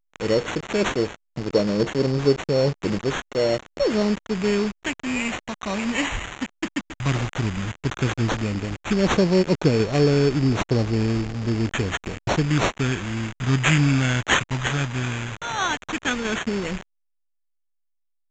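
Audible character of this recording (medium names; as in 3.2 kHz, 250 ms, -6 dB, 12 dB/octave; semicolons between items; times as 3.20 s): a quantiser's noise floor 6-bit, dither none; phasing stages 2, 0.12 Hz, lowest notch 420–1600 Hz; aliases and images of a low sample rate 4.9 kHz, jitter 0%; A-law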